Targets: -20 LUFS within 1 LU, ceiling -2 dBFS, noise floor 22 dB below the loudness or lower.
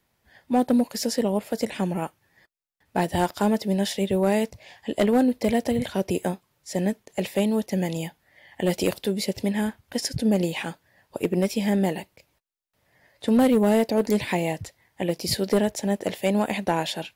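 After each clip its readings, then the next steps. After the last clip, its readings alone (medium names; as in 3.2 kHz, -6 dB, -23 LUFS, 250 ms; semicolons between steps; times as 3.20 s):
clipped samples 0.4%; clipping level -13.5 dBFS; loudness -25.0 LUFS; peak level -13.5 dBFS; loudness target -20.0 LUFS
-> clip repair -13.5 dBFS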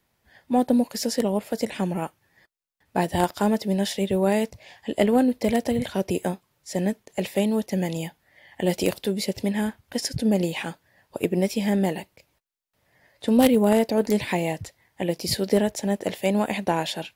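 clipped samples 0.0%; loudness -24.5 LUFS; peak level -4.5 dBFS; loudness target -20.0 LUFS
-> trim +4.5 dB; peak limiter -2 dBFS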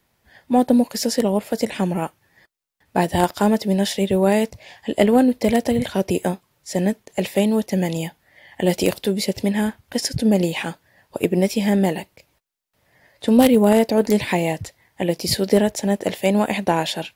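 loudness -20.0 LUFS; peak level -2.0 dBFS; noise floor -67 dBFS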